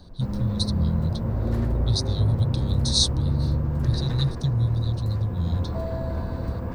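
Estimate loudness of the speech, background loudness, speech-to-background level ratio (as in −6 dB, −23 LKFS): −26.5 LKFS, −27.5 LKFS, 1.0 dB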